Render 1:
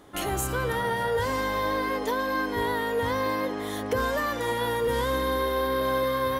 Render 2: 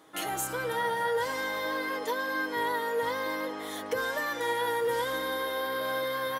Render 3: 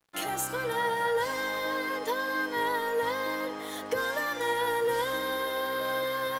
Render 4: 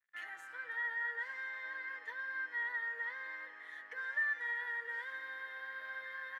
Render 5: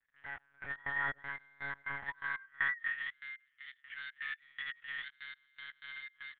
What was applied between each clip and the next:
high-pass filter 480 Hz 6 dB per octave; comb filter 6.3 ms, depth 58%; level −3 dB
dead-zone distortion −51.5 dBFS; level +1.5 dB
resonant band-pass 1,800 Hz, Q 9.1; level +1 dB
gate pattern "x.x..x.x" 121 BPM −24 dB; high-pass filter sweep 260 Hz → 2,800 Hz, 0:01.40–0:03.02; one-pitch LPC vocoder at 8 kHz 140 Hz; level +3.5 dB

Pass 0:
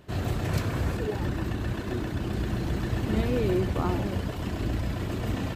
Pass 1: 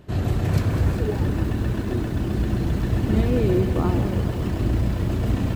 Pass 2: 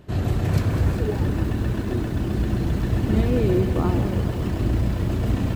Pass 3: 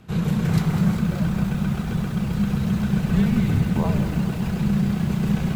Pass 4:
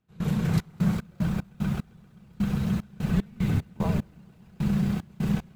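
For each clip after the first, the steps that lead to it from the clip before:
low-shelf EQ 480 Hz +7 dB; feedback echo at a low word length 202 ms, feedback 80%, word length 7 bits, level −12 dB
no processing that can be heard
frequency shifter −260 Hz; low-shelf EQ 73 Hz −10.5 dB; level +2.5 dB
gate pattern ".xx.x.x.x.." 75 BPM −24 dB; level −4 dB

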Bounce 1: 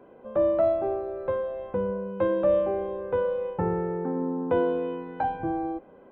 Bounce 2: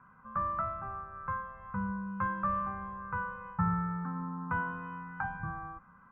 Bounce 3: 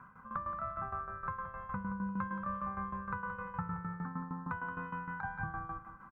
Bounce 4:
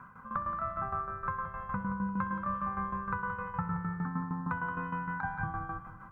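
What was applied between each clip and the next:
drawn EQ curve 190 Hz 0 dB, 350 Hz −29 dB, 640 Hz −24 dB, 1,200 Hz +11 dB, 2,700 Hz −11 dB, 4,100 Hz −27 dB
downward compressor 10 to 1, threshold −38 dBFS, peak gain reduction 13.5 dB; shaped tremolo saw down 6.5 Hz, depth 75%; repeating echo 174 ms, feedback 37%, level −10.5 dB; level +6 dB
convolution reverb RT60 1.2 s, pre-delay 64 ms, DRR 12 dB; level +4 dB

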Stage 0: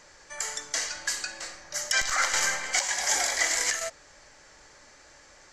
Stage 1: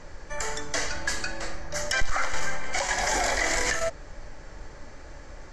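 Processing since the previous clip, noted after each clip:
spectral tilt −3.5 dB per octave
in parallel at +0.5 dB: compressor whose output falls as the input rises −31 dBFS, ratio −1
on the sum: level −2.5 dB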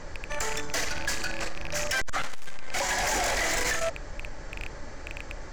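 loose part that buzzes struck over −39 dBFS, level −22 dBFS
soft clipping −27.5 dBFS, distortion −8 dB
level +4 dB

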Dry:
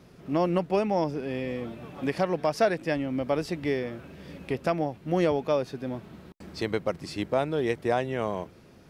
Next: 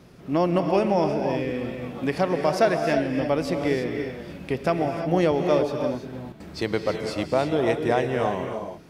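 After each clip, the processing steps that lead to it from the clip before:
reverb whose tail is shaped and stops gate 360 ms rising, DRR 4.5 dB
level +3 dB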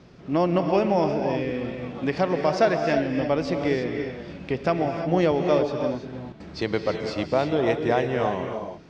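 low-pass filter 6,200 Hz 24 dB per octave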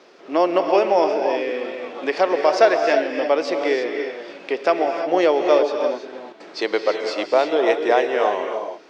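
high-pass filter 360 Hz 24 dB per octave
level +6 dB

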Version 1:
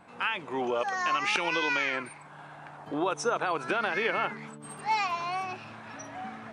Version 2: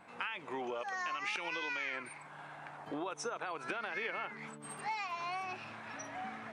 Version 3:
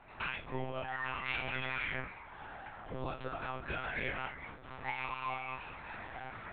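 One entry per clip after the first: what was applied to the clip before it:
low-shelf EQ 270 Hz −5 dB; downward compressor, threshold −34 dBFS, peak gain reduction 10.5 dB; parametric band 2,100 Hz +3.5 dB 0.56 octaves; level −2.5 dB
stylus tracing distortion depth 0.061 ms; tuned comb filter 65 Hz, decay 0.3 s, harmonics all, mix 100%; one-pitch LPC vocoder at 8 kHz 130 Hz; level +8.5 dB

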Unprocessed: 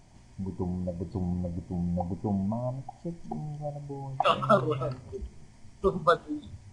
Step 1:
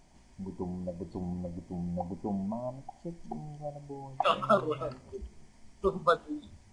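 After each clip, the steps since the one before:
parametric band 110 Hz −12.5 dB 0.64 octaves
level −2.5 dB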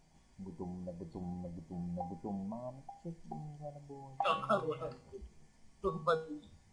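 tuned comb filter 160 Hz, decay 0.4 s, harmonics odd, mix 80%
level +5.5 dB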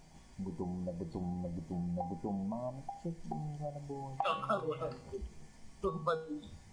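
downward compressor 2 to 1, threshold −46 dBFS, peak gain reduction 11 dB
level +8 dB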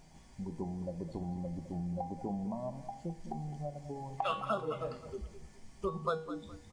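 repeating echo 209 ms, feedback 29%, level −13 dB

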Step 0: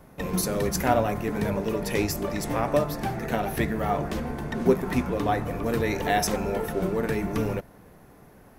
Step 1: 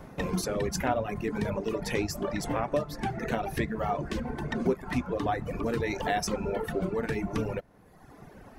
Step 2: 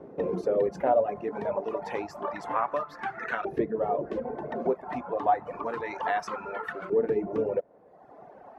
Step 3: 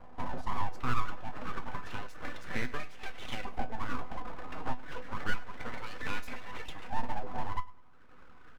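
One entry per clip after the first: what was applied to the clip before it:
reverb reduction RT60 1.1 s; parametric band 14,000 Hz −14 dB 0.74 octaves; downward compressor 2 to 1, threshold −38 dBFS, peak gain reduction 13 dB; level +5.5 dB
auto-filter band-pass saw up 0.29 Hz 400–1,500 Hz; level +8.5 dB
full-wave rectification; tuned comb filter 250 Hz, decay 0.2 s, harmonics all, mix 70%; repeating echo 103 ms, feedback 35%, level −20.5 dB; level +2.5 dB

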